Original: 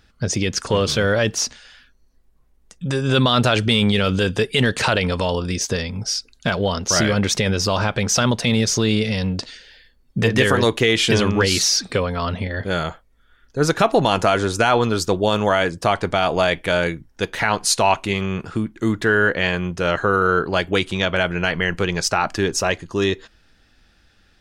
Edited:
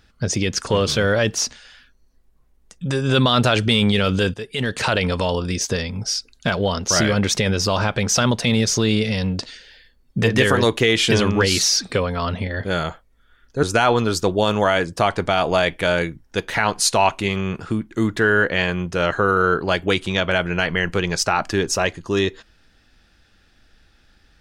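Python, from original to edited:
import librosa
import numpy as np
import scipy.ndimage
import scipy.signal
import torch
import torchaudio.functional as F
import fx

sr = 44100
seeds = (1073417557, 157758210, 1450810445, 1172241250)

y = fx.edit(x, sr, fx.fade_in_from(start_s=4.34, length_s=0.68, floor_db=-15.0),
    fx.cut(start_s=13.63, length_s=0.85), tone=tone)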